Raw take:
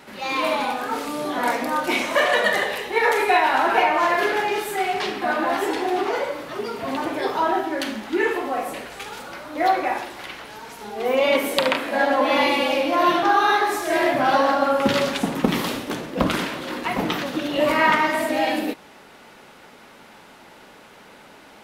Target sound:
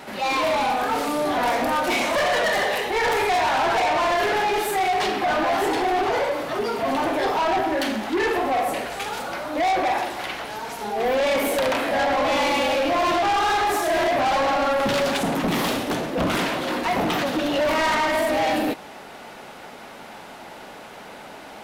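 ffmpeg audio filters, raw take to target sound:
-filter_complex "[0:a]equalizer=f=710:t=o:w=0.53:g=6,asplit=2[a][b];[b]alimiter=limit=-13.5dB:level=0:latency=1,volume=-2dB[c];[a][c]amix=inputs=2:normalize=0,asoftclip=type=tanh:threshold=-18.5dB"

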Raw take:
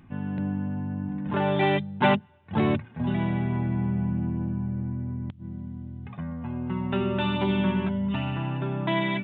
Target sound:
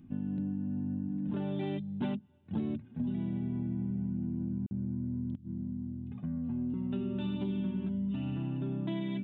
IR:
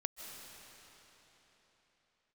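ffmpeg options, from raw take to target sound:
-filter_complex "[0:a]equalizer=f=250:t=o:w=1:g=10,equalizer=f=500:t=o:w=1:g=-3,equalizer=f=1k:t=o:w=1:g=-9,equalizer=f=2k:t=o:w=1:g=-9,acompressor=threshold=-25dB:ratio=6,asettb=1/sr,asplit=3[a][b][c];[a]atrim=end=4.664[d];[b]atrim=start=4.66:end=6.74,asetpts=PTS-STARTPTS,afade=t=in:d=0.004:c=qsin,afade=t=out:st=2.076:d=0.004:c=qsin,acrossover=split=3300[e][f];[e]adelay=50[g];[g][f]amix=inputs=2:normalize=0,atrim=end_sample=91728[h];[c]atrim=start=6.736[i];[d][h]acrossfade=d=0.004:c1=hsin:c2=qsin[j];[j][i]acrossfade=d=0.004:c1=qsin:c2=hsin,volume=-6dB"

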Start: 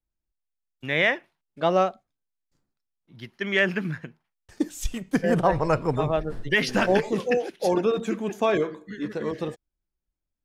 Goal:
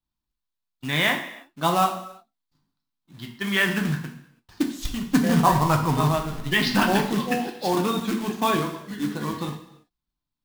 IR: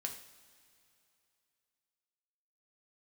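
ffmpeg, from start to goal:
-filter_complex "[0:a]equalizer=f=125:t=o:w=1:g=3,equalizer=f=250:t=o:w=1:g=8,equalizer=f=500:t=o:w=1:g=-10,equalizer=f=1k:t=o:w=1:g=11,equalizer=f=2k:t=o:w=1:g=-4,equalizer=f=4k:t=o:w=1:g=11,equalizer=f=8k:t=o:w=1:g=-9,acrusher=bits=3:mode=log:mix=0:aa=0.000001[a];[1:a]atrim=start_sample=2205,afade=t=out:st=0.39:d=0.01,atrim=end_sample=17640[b];[a][b]afir=irnorm=-1:irlink=0"

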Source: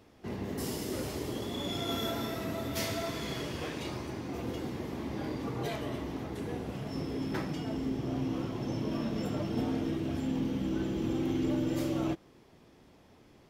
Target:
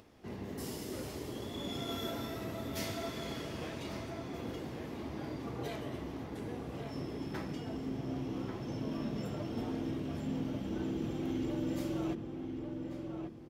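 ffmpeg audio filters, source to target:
-filter_complex "[0:a]asplit=2[a][b];[b]adelay=1140,lowpass=f=1.8k:p=1,volume=-5dB,asplit=2[c][d];[d]adelay=1140,lowpass=f=1.8k:p=1,volume=0.38,asplit=2[e][f];[f]adelay=1140,lowpass=f=1.8k:p=1,volume=0.38,asplit=2[g][h];[h]adelay=1140,lowpass=f=1.8k:p=1,volume=0.38,asplit=2[i][j];[j]adelay=1140,lowpass=f=1.8k:p=1,volume=0.38[k];[a][c][e][g][i][k]amix=inputs=6:normalize=0,acompressor=mode=upward:threshold=-49dB:ratio=2.5,volume=-5.5dB"

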